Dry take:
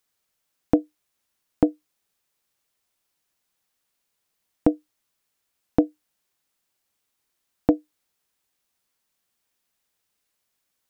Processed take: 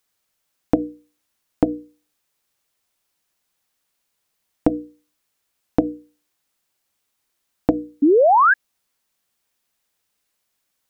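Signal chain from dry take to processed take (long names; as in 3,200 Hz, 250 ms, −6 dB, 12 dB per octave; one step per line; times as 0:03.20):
mains-hum notches 60/120/180/240/300/360/420/480 Hz
sound drawn into the spectrogram rise, 0:08.02–0:08.54, 270–1,700 Hz −16 dBFS
level +3 dB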